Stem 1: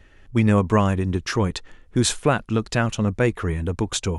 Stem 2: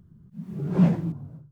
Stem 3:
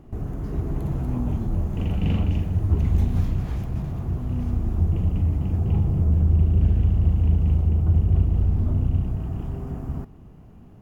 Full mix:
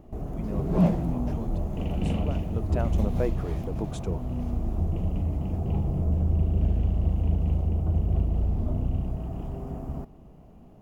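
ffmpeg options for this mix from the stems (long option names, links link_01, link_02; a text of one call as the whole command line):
ffmpeg -i stem1.wav -i stem2.wav -i stem3.wav -filter_complex "[0:a]equalizer=frequency=5200:width=0.37:gain=-12.5,volume=-8.5dB,afade=type=in:start_time=2.35:duration=0.54:silence=0.281838[link_01];[1:a]volume=-1.5dB[link_02];[2:a]volume=-2.5dB[link_03];[link_01][link_02][link_03]amix=inputs=3:normalize=0,equalizer=frequency=100:width_type=o:width=0.67:gain=-7,equalizer=frequency=630:width_type=o:width=0.67:gain=7,equalizer=frequency=1600:width_type=o:width=0.67:gain=-5" out.wav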